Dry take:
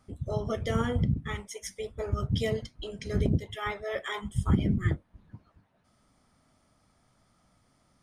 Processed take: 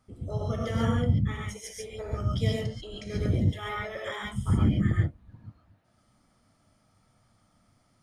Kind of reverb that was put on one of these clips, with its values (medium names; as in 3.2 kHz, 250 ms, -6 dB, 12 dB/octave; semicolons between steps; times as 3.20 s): gated-style reverb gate 160 ms rising, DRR -2.5 dB; trim -4.5 dB